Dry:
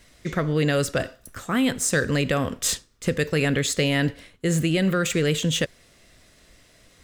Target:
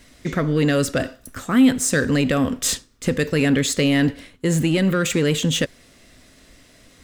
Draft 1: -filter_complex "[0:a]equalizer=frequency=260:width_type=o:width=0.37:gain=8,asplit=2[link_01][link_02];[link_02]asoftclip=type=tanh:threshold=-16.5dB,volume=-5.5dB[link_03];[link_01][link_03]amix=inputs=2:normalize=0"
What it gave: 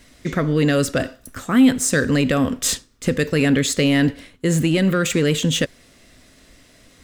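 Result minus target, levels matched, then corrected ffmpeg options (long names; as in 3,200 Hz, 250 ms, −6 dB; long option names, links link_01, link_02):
soft clipping: distortion −6 dB
-filter_complex "[0:a]equalizer=frequency=260:width_type=o:width=0.37:gain=8,asplit=2[link_01][link_02];[link_02]asoftclip=type=tanh:threshold=-24dB,volume=-5.5dB[link_03];[link_01][link_03]amix=inputs=2:normalize=0"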